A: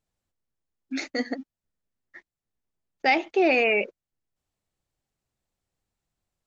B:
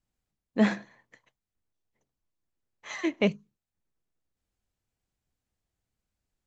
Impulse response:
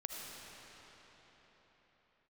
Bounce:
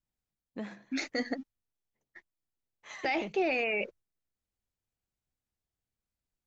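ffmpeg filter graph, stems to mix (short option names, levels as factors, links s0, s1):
-filter_complex "[0:a]agate=range=0.0224:threshold=0.00891:ratio=3:detection=peak,asubboost=boost=4.5:cutoff=130,volume=0.794[s0];[1:a]acompressor=threshold=0.0282:ratio=4,volume=0.447[s1];[s0][s1]amix=inputs=2:normalize=0,alimiter=limit=0.0841:level=0:latency=1:release=14"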